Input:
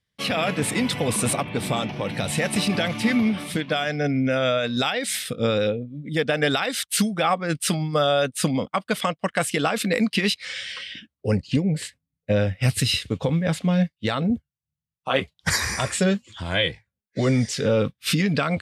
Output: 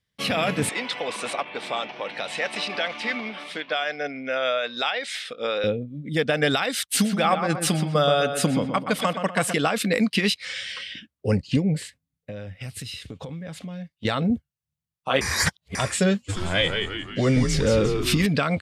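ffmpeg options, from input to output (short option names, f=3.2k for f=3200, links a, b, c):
-filter_complex "[0:a]asettb=1/sr,asplit=3[a][b][c];[a]atrim=end=0.694[d];[b]atrim=start=0.69:end=5.64,asetpts=PTS-STARTPTS,afade=t=in:d=0.004:c=qsin,afade=t=out:st=4.946:d=0.004:c=qsin,highpass=550,lowpass=4.5k[e];[c]atrim=start=5.636[f];[d][e]acrossfade=d=0.004:c1=hsin:c2=qsin[g];[g][f]acrossfade=d=0.004:c1=qsin:c2=hsin,asplit=3[h][i][j];[h]afade=t=out:st=6.94:d=0.02[k];[i]asplit=2[l][m];[m]adelay=124,lowpass=f=2.6k:p=1,volume=-7dB,asplit=2[n][o];[o]adelay=124,lowpass=f=2.6k:p=1,volume=0.45,asplit=2[p][q];[q]adelay=124,lowpass=f=2.6k:p=1,volume=0.45,asplit=2[r][s];[s]adelay=124,lowpass=f=2.6k:p=1,volume=0.45,asplit=2[t][u];[u]adelay=124,lowpass=f=2.6k:p=1,volume=0.45[v];[l][n][p][r][t][v]amix=inputs=6:normalize=0,afade=t=in:st=6.94:d=0.02,afade=t=out:st=9.52:d=0.02[w];[j]afade=t=in:st=9.52:d=0.02[x];[k][w][x]amix=inputs=3:normalize=0,asettb=1/sr,asplit=3[y][z][aa];[y]atrim=end=11.784[ab];[z]atrim=start=11.78:end=14.05,asetpts=PTS-STARTPTS,afade=t=in:d=0.004:c=qsin,afade=t=out:st=2.266:d=0.004:c=qsin,acompressor=threshold=-33dB:ratio=6:attack=3.2:release=140:knee=1:detection=peak[ac];[aa]atrim=start=14.046[ad];[ab][ac]acrossfade=d=0.004:c1=hsin:c2=qsin[ae];[ae][ad]acrossfade=d=0.004:c1=qsin:c2=hsin,asplit=3[af][ag][ah];[af]afade=t=out:st=16.28:d=0.02[ai];[ag]asplit=7[aj][ak][al][am][an][ao][ap];[ak]adelay=177,afreqshift=-97,volume=-5dB[aq];[al]adelay=354,afreqshift=-194,volume=-10.8dB[ar];[am]adelay=531,afreqshift=-291,volume=-16.7dB[as];[an]adelay=708,afreqshift=-388,volume=-22.5dB[at];[ao]adelay=885,afreqshift=-485,volume=-28.4dB[au];[ap]adelay=1062,afreqshift=-582,volume=-34.2dB[av];[aj][aq][ar][as][at][au][av]amix=inputs=7:normalize=0,afade=t=in:st=16.28:d=0.02,afade=t=out:st=18.25:d=0.02[aw];[ah]afade=t=in:st=18.25:d=0.02[ax];[ai][aw][ax]amix=inputs=3:normalize=0,asplit=3[ay][az][ba];[ay]atrim=end=15.212[bb];[az]atrim=start=15.208:end=15.752,asetpts=PTS-STARTPTS,areverse[bc];[ba]atrim=start=15.748[bd];[bb][bc]acrossfade=d=0.004:c1=hsin:c2=hsin[be];[be][bd]acrossfade=d=0.004:c1=hsin:c2=hsin"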